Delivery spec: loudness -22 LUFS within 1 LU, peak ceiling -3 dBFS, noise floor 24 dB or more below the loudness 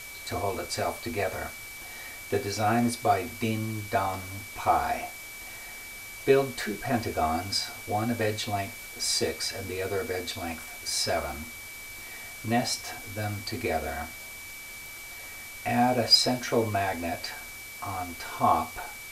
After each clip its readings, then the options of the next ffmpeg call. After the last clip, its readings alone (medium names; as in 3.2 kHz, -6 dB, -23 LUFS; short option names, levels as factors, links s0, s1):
steady tone 2.3 kHz; tone level -42 dBFS; noise floor -42 dBFS; noise floor target -53 dBFS; loudness -29.0 LUFS; peak level -8.5 dBFS; loudness target -22.0 LUFS
-> -af "bandreject=f=2300:w=30"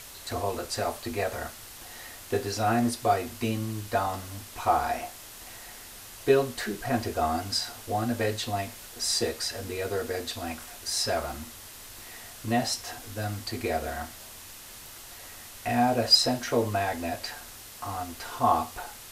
steady tone not found; noise floor -46 dBFS; noise floor target -53 dBFS
-> -af "afftdn=nr=7:nf=-46"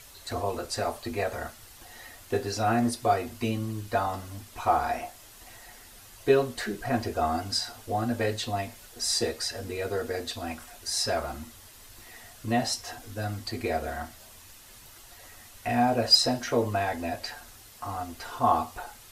noise floor -51 dBFS; noise floor target -53 dBFS
-> -af "afftdn=nr=6:nf=-51"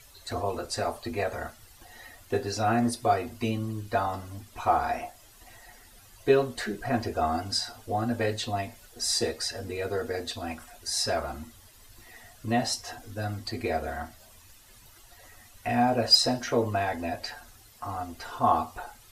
noise floor -54 dBFS; loudness -29.0 LUFS; peak level -8.5 dBFS; loudness target -22.0 LUFS
-> -af "volume=2.24,alimiter=limit=0.708:level=0:latency=1"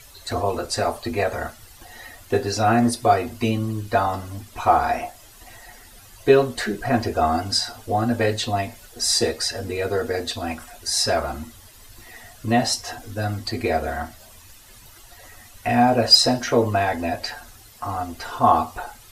loudness -22.0 LUFS; peak level -3.0 dBFS; noise floor -47 dBFS